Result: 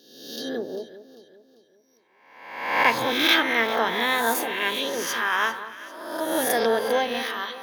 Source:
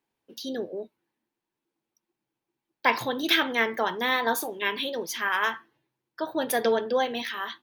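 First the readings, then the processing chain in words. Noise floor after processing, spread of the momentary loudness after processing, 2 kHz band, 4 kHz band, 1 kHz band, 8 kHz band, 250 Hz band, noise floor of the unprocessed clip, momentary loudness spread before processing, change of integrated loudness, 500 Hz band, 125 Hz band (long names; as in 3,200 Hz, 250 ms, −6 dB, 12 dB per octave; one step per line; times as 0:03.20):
−61 dBFS, 16 LU, +4.0 dB, +4.5 dB, +3.5 dB, +5.5 dB, +2.5 dB, below −85 dBFS, 13 LU, +3.5 dB, +2.5 dB, +3.5 dB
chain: peak hold with a rise ahead of every peak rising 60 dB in 0.92 s
delay that swaps between a low-pass and a high-pass 198 ms, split 1,400 Hz, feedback 62%, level −11 dB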